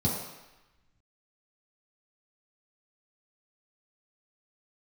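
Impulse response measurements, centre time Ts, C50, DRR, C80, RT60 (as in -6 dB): 61 ms, 2.0 dB, -7.0 dB, 4.5 dB, 1.0 s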